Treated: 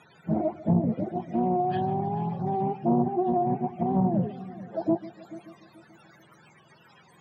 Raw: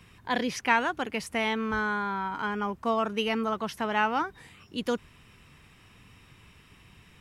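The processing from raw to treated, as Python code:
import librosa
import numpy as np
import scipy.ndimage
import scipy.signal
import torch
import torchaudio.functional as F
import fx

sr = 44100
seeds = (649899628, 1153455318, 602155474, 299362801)

y = fx.octave_mirror(x, sr, pivot_hz=400.0)
y = scipy.signal.sosfilt(scipy.signal.butter(4, 170.0, 'highpass', fs=sr, output='sos'), y)
y = fx.env_lowpass_down(y, sr, base_hz=560.0, full_db=-22.0)
y = fx.echo_heads(y, sr, ms=145, heads='first and third', feedback_pct=46, wet_db=-17.5)
y = fx.doppler_dist(y, sr, depth_ms=0.29)
y = F.gain(torch.from_numpy(y), 6.0).numpy()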